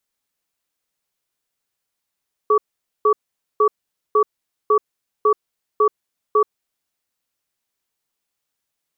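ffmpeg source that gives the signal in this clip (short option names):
-f lavfi -i "aevalsrc='0.2*(sin(2*PI*424*t)+sin(2*PI*1140*t))*clip(min(mod(t,0.55),0.08-mod(t,0.55))/0.005,0,1)':d=4.38:s=44100"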